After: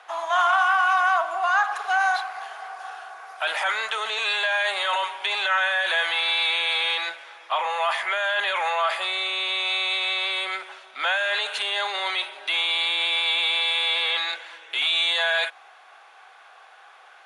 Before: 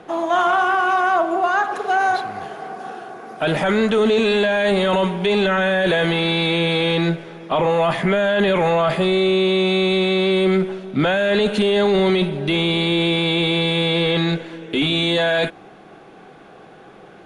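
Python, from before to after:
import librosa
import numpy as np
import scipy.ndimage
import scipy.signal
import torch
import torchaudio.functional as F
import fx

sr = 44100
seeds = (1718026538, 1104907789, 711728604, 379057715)

y = scipy.signal.sosfilt(scipy.signal.butter(4, 850.0, 'highpass', fs=sr, output='sos'), x)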